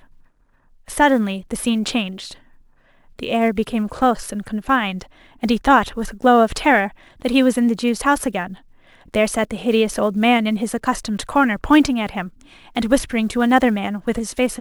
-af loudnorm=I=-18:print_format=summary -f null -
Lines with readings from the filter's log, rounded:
Input Integrated:    -18.8 LUFS
Input True Peak:      -1.2 dBTP
Input LRA:             4.3 LU
Input Threshold:     -29.5 LUFS